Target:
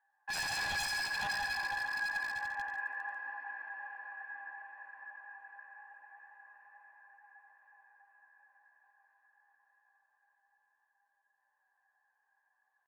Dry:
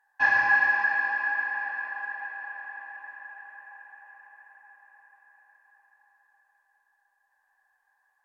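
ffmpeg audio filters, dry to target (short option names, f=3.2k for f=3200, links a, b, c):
-af "highpass=260,highshelf=f=3.1k:g=-10.5,bandreject=f=370:w=12,atempo=0.64,asoftclip=type=hard:threshold=-21dB,flanger=delay=8.4:depth=9.8:regen=2:speed=0.26:shape=triangular,aeval=exprs='0.0335*(abs(mod(val(0)/0.0335+3,4)-2)-1)':c=same,aecho=1:1:87.46|142.9:0.398|0.355,volume=-2.5dB"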